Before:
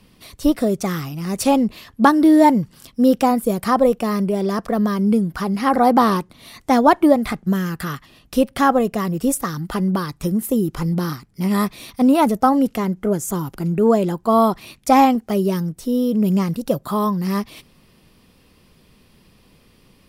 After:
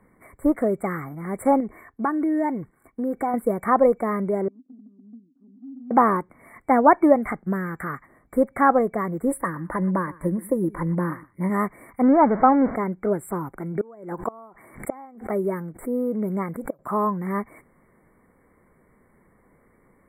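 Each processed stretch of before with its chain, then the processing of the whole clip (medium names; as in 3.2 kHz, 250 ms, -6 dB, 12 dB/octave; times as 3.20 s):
1.60–3.34 s: gate -44 dBFS, range -9 dB + comb 2.7 ms, depth 35% + compression 3:1, threshold -20 dBFS
4.48–5.91 s: Butterworth band-pass 260 Hz, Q 7.9 + compression 2:1, threshold -41 dBFS
9.31–11.50 s: rippled EQ curve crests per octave 1.2, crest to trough 8 dB + delay 121 ms -20 dB
12.03–12.76 s: jump at every zero crossing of -20 dBFS + low-pass 1.8 kHz
13.60–16.79 s: bass shelf 230 Hz -5.5 dB + inverted gate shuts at -11 dBFS, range -27 dB + swell ahead of each attack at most 120 dB/s
whole clip: FFT band-reject 2.3–7.4 kHz; tone controls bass -8 dB, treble -13 dB; trim -1 dB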